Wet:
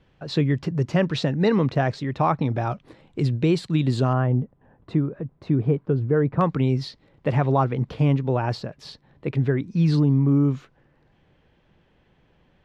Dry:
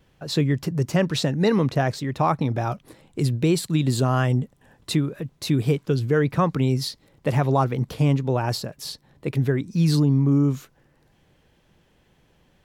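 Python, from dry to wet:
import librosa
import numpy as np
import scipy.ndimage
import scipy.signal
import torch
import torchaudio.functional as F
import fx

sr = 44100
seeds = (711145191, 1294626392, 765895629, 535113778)

y = fx.lowpass(x, sr, hz=fx.steps((0.0, 3900.0), (4.13, 1200.0), (6.41, 3200.0)), slope=12)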